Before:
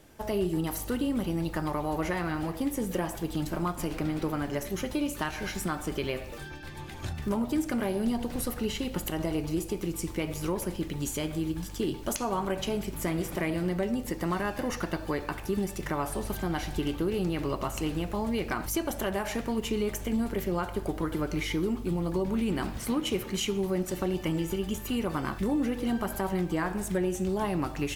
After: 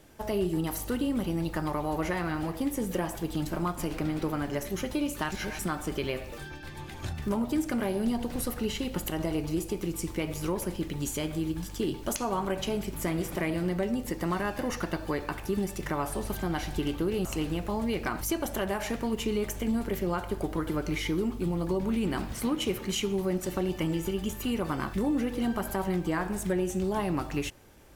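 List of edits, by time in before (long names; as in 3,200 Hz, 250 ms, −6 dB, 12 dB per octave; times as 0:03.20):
0:05.32–0:05.59: reverse
0:17.25–0:17.70: remove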